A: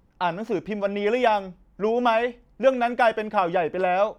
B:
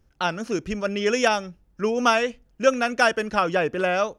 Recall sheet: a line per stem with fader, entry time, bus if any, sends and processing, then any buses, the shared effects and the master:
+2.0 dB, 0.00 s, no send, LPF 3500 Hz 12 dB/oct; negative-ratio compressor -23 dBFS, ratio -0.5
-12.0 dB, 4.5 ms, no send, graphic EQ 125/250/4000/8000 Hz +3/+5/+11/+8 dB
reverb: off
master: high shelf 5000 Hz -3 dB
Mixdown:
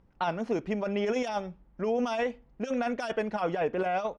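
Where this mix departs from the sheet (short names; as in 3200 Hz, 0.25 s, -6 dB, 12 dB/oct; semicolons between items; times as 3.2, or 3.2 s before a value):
stem A +2.0 dB -> -5.0 dB; stem B -12.0 dB -> -24.0 dB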